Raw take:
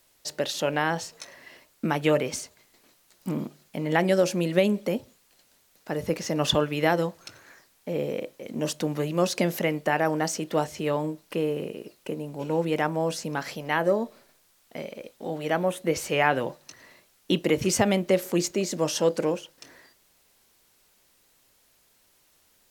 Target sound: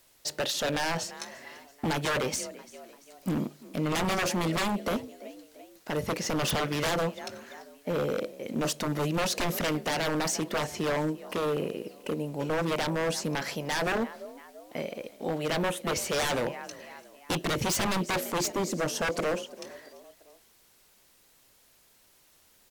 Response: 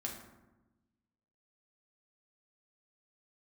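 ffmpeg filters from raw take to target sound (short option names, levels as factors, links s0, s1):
-filter_complex "[0:a]asettb=1/sr,asplit=3[s0][s1][s2];[s0]atrim=end=18.524[s3];[s1]atrim=start=18.52:end=19.02,asetpts=PTS-STARTPTS,afade=t=in:d=0.004:c=qsin,afade=t=out:st=0.496:d=0.004:c=qsin,equalizer=f=3500:w=0.4:g=-7.5[s4];[s2]atrim=start=19.016[s5];[s3][s4]acrossfade=d=0.004:c1=hsin:c2=qsin[s6];[s6][s5]acrossfade=d=0.004:c1=qsin:c2=hsin,asplit=4[s7][s8][s9][s10];[s8]adelay=340,afreqshift=44,volume=0.0841[s11];[s9]adelay=680,afreqshift=88,volume=0.0412[s12];[s10]adelay=1020,afreqshift=132,volume=0.0202[s13];[s7][s11][s12][s13]amix=inputs=4:normalize=0,aeval=exprs='0.0631*(abs(mod(val(0)/0.0631+3,4)-2)-1)':c=same,volume=1.19"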